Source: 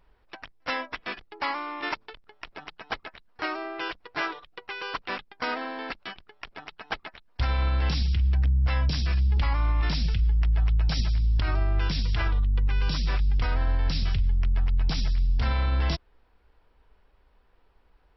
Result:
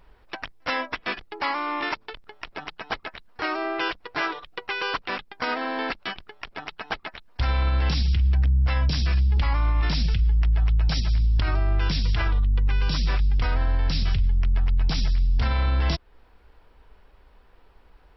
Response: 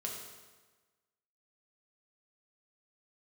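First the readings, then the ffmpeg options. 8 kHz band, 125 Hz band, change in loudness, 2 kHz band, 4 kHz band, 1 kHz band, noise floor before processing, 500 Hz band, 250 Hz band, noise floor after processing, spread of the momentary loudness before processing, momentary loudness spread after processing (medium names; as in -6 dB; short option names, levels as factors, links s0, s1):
no reading, +2.5 dB, +2.5 dB, +3.5 dB, +3.0 dB, +3.5 dB, -63 dBFS, +4.0 dB, +3.5 dB, -56 dBFS, 15 LU, 13 LU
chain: -af "alimiter=limit=0.0708:level=0:latency=1:release=281,volume=2.51"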